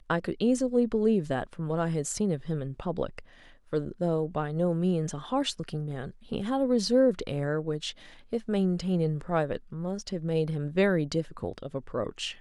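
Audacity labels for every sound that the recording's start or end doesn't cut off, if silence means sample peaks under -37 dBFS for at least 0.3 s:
3.730000	7.910000	sound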